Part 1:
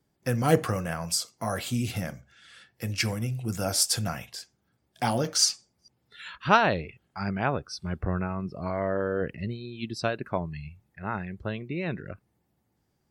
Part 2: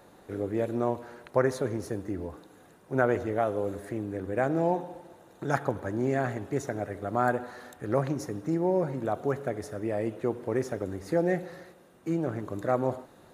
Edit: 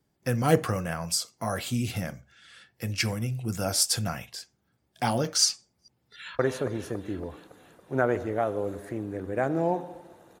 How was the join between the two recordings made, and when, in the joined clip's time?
part 1
0:05.84–0:06.39: delay throw 280 ms, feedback 60%, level −4 dB
0:06.39: continue with part 2 from 0:01.39

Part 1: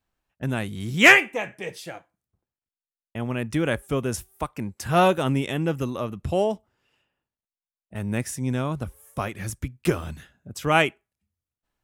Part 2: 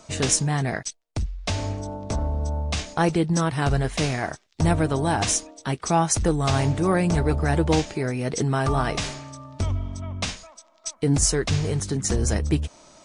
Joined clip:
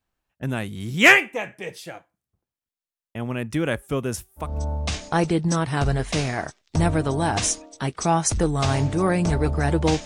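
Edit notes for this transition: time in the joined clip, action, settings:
part 1
0:04.48: continue with part 2 from 0:02.33, crossfade 0.24 s

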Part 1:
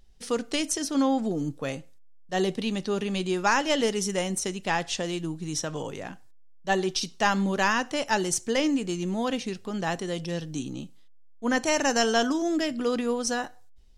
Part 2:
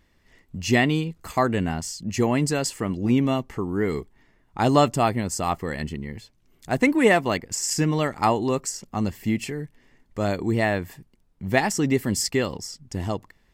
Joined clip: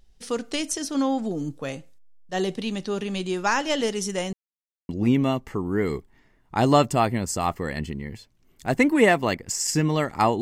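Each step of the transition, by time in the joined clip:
part 1
0:04.33–0:04.89: silence
0:04.89: continue with part 2 from 0:02.92

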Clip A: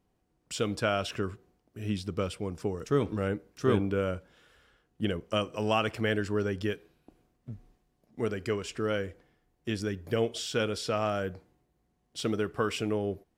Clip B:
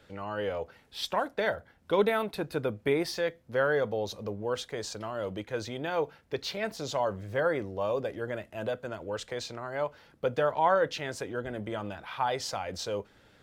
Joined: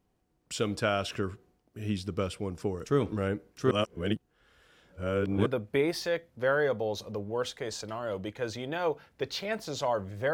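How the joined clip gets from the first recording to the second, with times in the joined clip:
clip A
0:03.71–0:05.46: reverse
0:05.46: continue with clip B from 0:02.58

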